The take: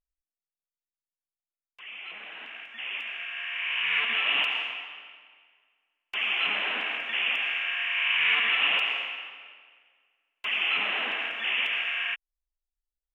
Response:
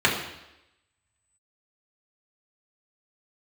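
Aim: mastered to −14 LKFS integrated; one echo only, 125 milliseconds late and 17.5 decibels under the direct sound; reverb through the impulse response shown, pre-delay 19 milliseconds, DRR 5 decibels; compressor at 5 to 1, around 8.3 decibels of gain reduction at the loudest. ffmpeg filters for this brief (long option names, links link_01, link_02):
-filter_complex "[0:a]acompressor=threshold=-30dB:ratio=5,aecho=1:1:125:0.133,asplit=2[link_01][link_02];[1:a]atrim=start_sample=2205,adelay=19[link_03];[link_02][link_03]afir=irnorm=-1:irlink=0,volume=-23dB[link_04];[link_01][link_04]amix=inputs=2:normalize=0,volume=16.5dB"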